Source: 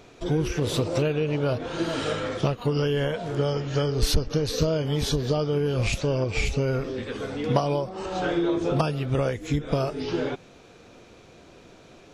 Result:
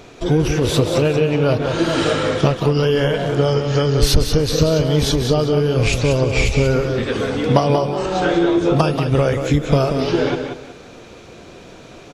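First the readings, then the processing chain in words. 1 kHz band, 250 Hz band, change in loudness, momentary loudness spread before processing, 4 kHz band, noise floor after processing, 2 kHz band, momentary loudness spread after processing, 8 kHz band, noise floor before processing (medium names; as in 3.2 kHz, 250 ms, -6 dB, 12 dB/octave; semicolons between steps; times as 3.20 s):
+9.0 dB, +9.0 dB, +9.0 dB, 4 LU, +8.5 dB, -40 dBFS, +9.0 dB, 3 LU, +8.5 dB, -51 dBFS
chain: in parallel at +1 dB: gain riding; on the sum: feedback delay 184 ms, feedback 25%, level -7 dB; trim +1.5 dB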